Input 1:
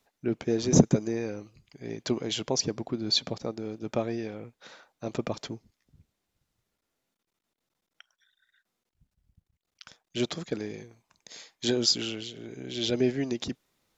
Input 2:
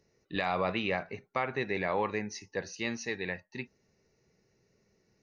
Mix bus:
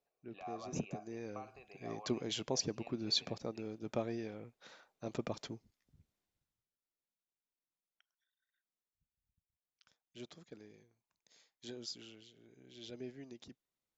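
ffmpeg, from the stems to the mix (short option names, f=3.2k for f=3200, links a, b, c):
-filter_complex "[0:a]volume=-8dB,afade=t=in:st=0.99:d=0.52:silence=0.223872,afade=t=out:st=6.18:d=0.52:silence=0.223872[a];[1:a]acompressor=threshold=-35dB:ratio=3,asplit=3[b][c][d];[b]bandpass=f=730:t=q:w=8,volume=0dB[e];[c]bandpass=f=1.09k:t=q:w=8,volume=-6dB[f];[d]bandpass=f=2.44k:t=q:w=8,volume=-9dB[g];[e][f][g]amix=inputs=3:normalize=0,volume=-3.5dB[h];[a][h]amix=inputs=2:normalize=0"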